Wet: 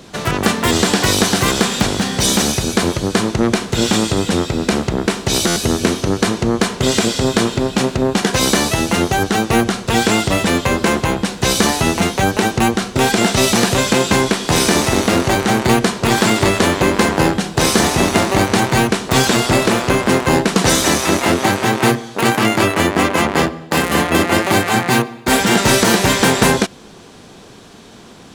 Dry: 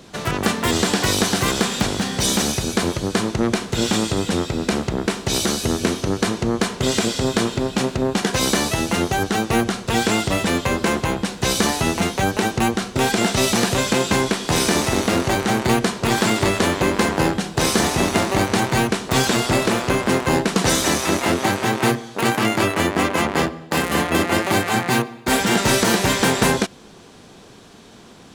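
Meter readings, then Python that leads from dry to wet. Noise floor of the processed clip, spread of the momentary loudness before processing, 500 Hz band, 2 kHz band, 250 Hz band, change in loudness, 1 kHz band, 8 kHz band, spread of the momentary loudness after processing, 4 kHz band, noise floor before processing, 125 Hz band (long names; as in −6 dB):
−40 dBFS, 4 LU, +4.5 dB, +4.5 dB, +4.5 dB, +4.5 dB, +4.5 dB, +4.5 dB, 4 LU, +4.5 dB, −44 dBFS, +4.5 dB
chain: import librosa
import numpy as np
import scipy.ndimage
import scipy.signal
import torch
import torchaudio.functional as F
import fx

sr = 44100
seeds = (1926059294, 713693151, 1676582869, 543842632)

y = fx.buffer_glitch(x, sr, at_s=(5.47,), block=512, repeats=7)
y = F.gain(torch.from_numpy(y), 4.5).numpy()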